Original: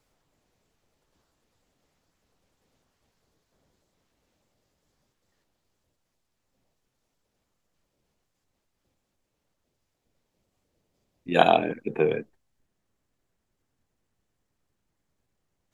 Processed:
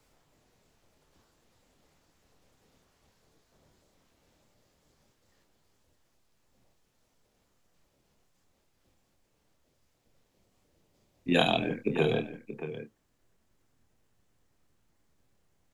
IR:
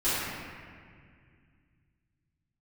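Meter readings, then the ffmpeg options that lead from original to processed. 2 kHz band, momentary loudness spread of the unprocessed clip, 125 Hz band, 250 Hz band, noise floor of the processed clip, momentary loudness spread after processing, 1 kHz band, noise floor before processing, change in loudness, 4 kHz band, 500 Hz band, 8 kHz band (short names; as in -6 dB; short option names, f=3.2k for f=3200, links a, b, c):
-2.5 dB, 11 LU, +2.5 dB, +0.5 dB, -73 dBFS, 16 LU, -10.0 dB, -79 dBFS, -6.0 dB, +2.0 dB, -5.5 dB, n/a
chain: -filter_complex "[0:a]acrossover=split=200|3000[a][b][c];[b]acompressor=threshold=-30dB:ratio=6[d];[a][d][c]amix=inputs=3:normalize=0,asplit=2[e][f];[f]adelay=27,volume=-8dB[g];[e][g]amix=inputs=2:normalize=0,asplit=2[h][i];[i]aecho=0:1:629:0.266[j];[h][j]amix=inputs=2:normalize=0,volume=4dB"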